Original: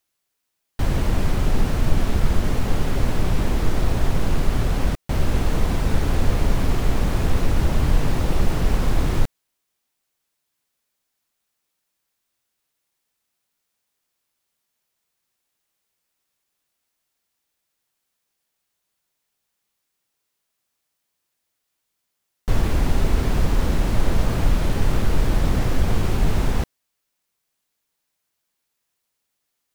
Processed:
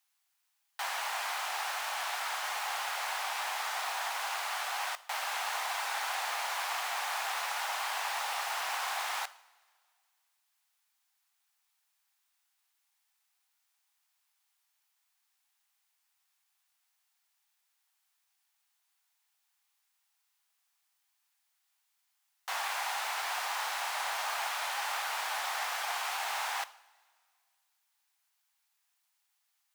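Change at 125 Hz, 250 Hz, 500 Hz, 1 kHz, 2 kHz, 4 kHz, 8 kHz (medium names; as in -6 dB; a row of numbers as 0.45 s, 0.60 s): under -40 dB, under -40 dB, -16.5 dB, -1.0 dB, 0.0 dB, -0.5 dB, -0.5 dB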